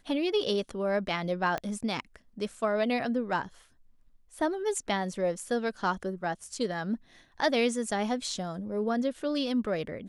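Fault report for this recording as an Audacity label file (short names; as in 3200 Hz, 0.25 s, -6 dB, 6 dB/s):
1.580000	1.580000	pop -18 dBFS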